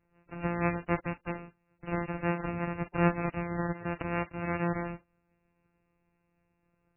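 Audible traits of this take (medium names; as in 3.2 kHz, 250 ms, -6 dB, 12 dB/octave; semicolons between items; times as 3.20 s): a buzz of ramps at a fixed pitch in blocks of 256 samples; MP3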